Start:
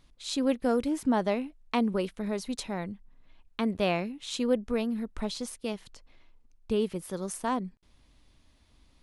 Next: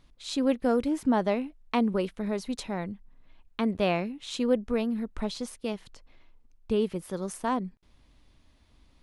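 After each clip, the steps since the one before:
high-shelf EQ 4,400 Hz −5.5 dB
level +1.5 dB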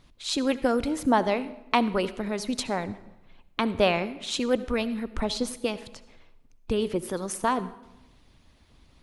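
harmonic and percussive parts rebalanced harmonic −9 dB
on a send at −15 dB: convolution reverb RT60 0.95 s, pre-delay 60 ms
on the sum: level +8 dB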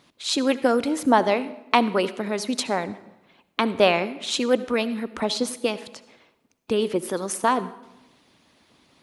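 high-pass filter 210 Hz 12 dB per octave
level +4.5 dB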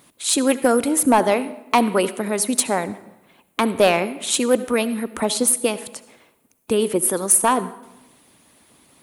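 high shelf with overshoot 7,100 Hz +12.5 dB, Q 1.5
in parallel at −6 dB: wave folding −13 dBFS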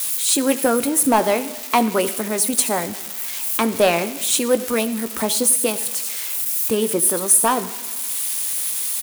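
spike at every zero crossing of −17.5 dBFS
double-tracking delay 18 ms −12 dB
level −1 dB

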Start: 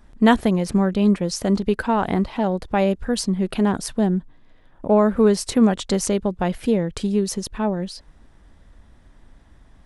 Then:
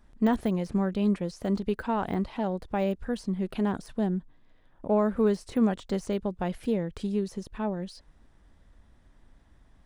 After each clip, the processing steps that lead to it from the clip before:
de-essing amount 90%
level −8 dB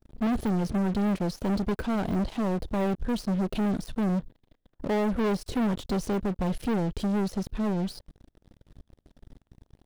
octave-band graphic EQ 1,000/2,000/8,000 Hz −10/−10/−8 dB
leveller curve on the samples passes 5
level −7.5 dB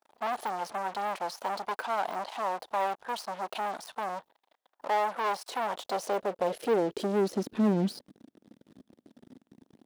high-pass filter sweep 840 Hz → 240 Hz, 0:05.55–0:07.76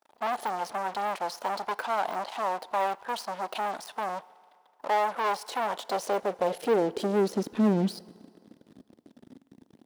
feedback delay network reverb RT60 2.3 s, low-frequency decay 0.75×, high-frequency decay 0.85×, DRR 20 dB
level +2 dB

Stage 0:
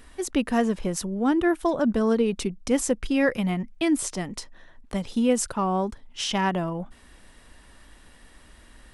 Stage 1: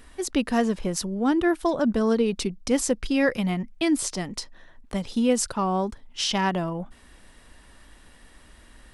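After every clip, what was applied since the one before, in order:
dynamic equaliser 4,600 Hz, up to +6 dB, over −50 dBFS, Q 1.9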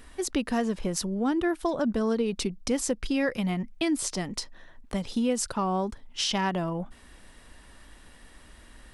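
downward compressor 2 to 1, threshold −26 dBFS, peak gain reduction 6 dB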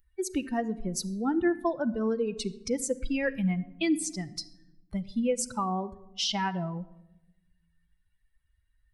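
spectral dynamics exaggerated over time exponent 2
rectangular room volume 4,000 cubic metres, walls furnished, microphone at 0.74 metres
level +1.5 dB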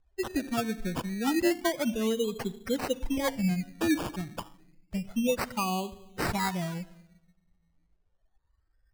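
sample-and-hold swept by an LFO 17×, swing 60% 0.3 Hz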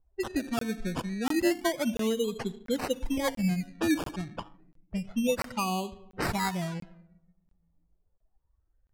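low-pass that shuts in the quiet parts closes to 840 Hz, open at −27 dBFS
regular buffer underruns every 0.69 s, samples 1,024, zero, from 0:00.59

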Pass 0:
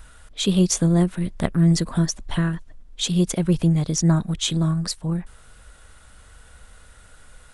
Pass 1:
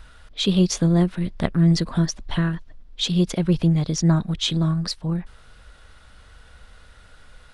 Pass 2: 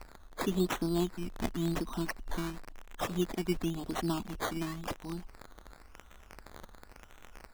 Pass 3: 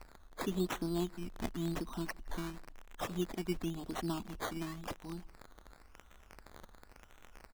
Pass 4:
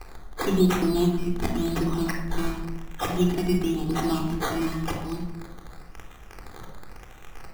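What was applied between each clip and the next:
high shelf with overshoot 6,100 Hz −8 dB, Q 1.5
phaser with its sweep stopped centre 540 Hz, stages 6; surface crackle 250 per second −30 dBFS; sample-and-hold swept by an LFO 13×, swing 60% 0.94 Hz; level −6 dB
slap from a distant wall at 28 metres, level −28 dB; level −4.5 dB
rectangular room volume 2,500 cubic metres, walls furnished, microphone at 3.8 metres; level +8 dB

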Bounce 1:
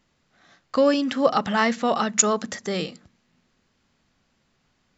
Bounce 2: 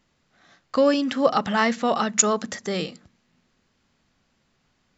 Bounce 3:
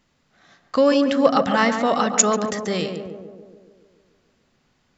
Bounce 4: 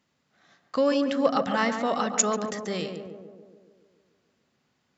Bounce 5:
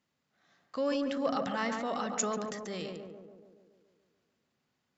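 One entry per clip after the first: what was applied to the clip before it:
no processing that can be heard
tape delay 143 ms, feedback 71%, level −4.5 dB, low-pass 1,100 Hz; level +2 dB
high-pass filter 100 Hz; level −6.5 dB
transient designer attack −2 dB, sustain +6 dB; level −8 dB

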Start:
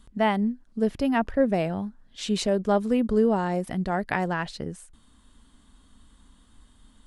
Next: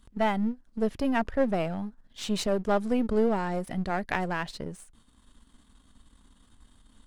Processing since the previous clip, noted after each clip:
gain on one half-wave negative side −7 dB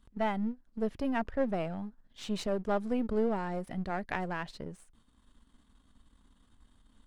high-shelf EQ 4,500 Hz −6.5 dB
level −5 dB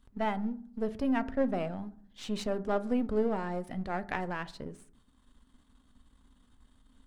convolution reverb RT60 0.55 s, pre-delay 4 ms, DRR 12 dB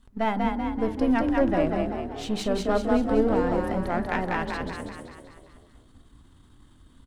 tape wow and flutter 27 cents
on a send: echo with shifted repeats 192 ms, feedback 53%, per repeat +36 Hz, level −3 dB
on the sum: level +5.5 dB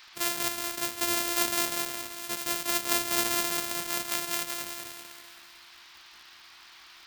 samples sorted by size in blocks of 128 samples
spectral tilt +4 dB per octave
noise in a band 900–5,100 Hz −45 dBFS
level −7.5 dB

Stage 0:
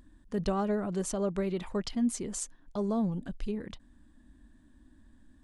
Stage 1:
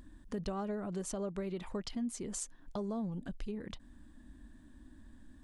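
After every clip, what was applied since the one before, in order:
downward compressor 2.5 to 1, threshold −43 dBFS, peak gain reduction 12.5 dB
level +3 dB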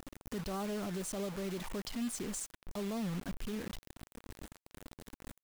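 high-shelf EQ 8,600 Hz +8.5 dB
brickwall limiter −33.5 dBFS, peak gain reduction 10.5 dB
bit reduction 8 bits
level +2.5 dB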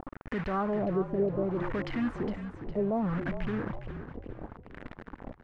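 auto-filter low-pass sine 0.67 Hz 390–2,000 Hz
echo with shifted repeats 410 ms, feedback 43%, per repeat −48 Hz, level −9.5 dB
level +6 dB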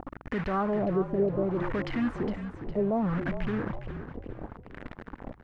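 mains hum 60 Hz, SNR 32 dB
level +2 dB

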